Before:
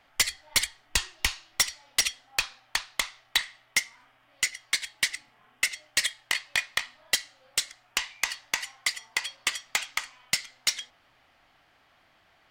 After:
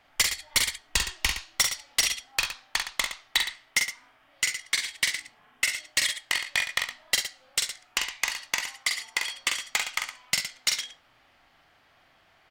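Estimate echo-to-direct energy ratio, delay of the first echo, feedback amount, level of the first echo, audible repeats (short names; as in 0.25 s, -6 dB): -3.5 dB, 45 ms, no steady repeat, -5.0 dB, 2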